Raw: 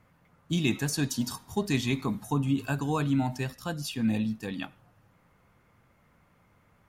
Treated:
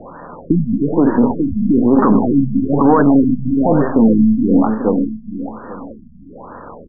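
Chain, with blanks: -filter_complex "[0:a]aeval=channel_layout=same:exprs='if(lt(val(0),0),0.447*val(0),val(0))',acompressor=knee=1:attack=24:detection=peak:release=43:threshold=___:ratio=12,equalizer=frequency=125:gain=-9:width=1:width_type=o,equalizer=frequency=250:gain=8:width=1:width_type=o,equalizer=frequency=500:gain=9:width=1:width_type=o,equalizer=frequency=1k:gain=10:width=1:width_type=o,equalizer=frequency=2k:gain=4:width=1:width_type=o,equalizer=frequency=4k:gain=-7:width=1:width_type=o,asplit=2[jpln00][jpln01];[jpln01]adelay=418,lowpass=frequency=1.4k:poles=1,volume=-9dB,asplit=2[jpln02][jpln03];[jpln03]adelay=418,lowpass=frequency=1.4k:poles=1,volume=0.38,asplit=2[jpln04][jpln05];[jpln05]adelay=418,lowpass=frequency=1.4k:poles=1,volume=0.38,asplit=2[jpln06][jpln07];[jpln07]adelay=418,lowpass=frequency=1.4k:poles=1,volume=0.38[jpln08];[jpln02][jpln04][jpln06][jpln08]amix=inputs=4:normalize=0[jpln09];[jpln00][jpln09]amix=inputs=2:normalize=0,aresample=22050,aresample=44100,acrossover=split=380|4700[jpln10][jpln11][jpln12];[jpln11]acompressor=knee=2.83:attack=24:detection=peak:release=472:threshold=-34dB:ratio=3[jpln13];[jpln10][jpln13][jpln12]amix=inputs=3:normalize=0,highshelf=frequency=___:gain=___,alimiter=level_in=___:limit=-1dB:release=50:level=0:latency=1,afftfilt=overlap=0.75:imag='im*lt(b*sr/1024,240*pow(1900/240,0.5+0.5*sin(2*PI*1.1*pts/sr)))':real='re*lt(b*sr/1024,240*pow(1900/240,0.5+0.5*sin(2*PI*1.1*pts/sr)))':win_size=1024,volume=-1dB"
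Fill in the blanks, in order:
-39dB, 5.3k, 11, 26.5dB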